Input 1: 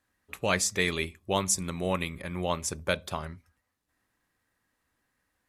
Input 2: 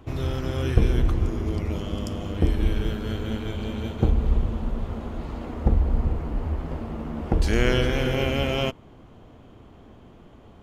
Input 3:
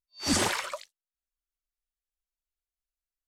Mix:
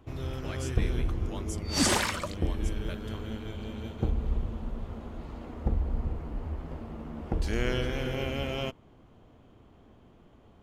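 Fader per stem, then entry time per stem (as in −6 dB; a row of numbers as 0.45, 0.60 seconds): −16.5, −8.0, +1.0 decibels; 0.00, 0.00, 1.50 seconds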